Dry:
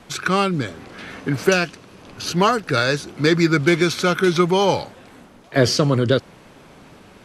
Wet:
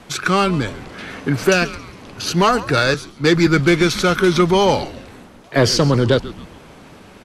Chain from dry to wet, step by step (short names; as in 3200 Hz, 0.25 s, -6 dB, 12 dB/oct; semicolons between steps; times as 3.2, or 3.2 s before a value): frequency-shifting echo 0.137 s, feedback 44%, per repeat -150 Hz, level -17 dB; sine folder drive 3 dB, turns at -2 dBFS; 2.94–3.47 three-band expander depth 70%; gain -3.5 dB